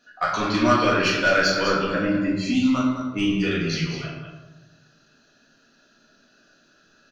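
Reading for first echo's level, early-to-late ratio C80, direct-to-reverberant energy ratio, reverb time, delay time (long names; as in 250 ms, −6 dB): −7.5 dB, 3.0 dB, −6.0 dB, 1.1 s, 203 ms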